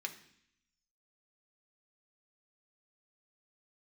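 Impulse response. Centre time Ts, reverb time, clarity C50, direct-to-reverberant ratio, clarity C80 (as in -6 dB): 10 ms, 0.65 s, 12.5 dB, 3.5 dB, 15.0 dB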